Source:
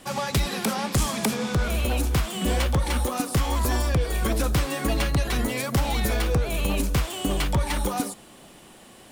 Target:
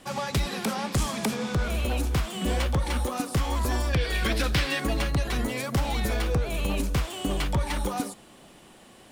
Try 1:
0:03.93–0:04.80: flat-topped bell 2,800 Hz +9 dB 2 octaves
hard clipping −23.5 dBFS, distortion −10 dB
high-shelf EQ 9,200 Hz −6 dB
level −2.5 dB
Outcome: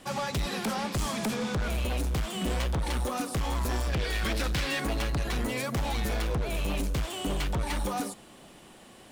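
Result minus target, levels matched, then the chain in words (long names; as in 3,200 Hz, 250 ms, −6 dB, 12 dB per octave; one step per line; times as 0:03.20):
hard clipping: distortion +21 dB
0:03.93–0:04.80: flat-topped bell 2,800 Hz +9 dB 2 octaves
hard clipping −15 dBFS, distortion −32 dB
high-shelf EQ 9,200 Hz −6 dB
level −2.5 dB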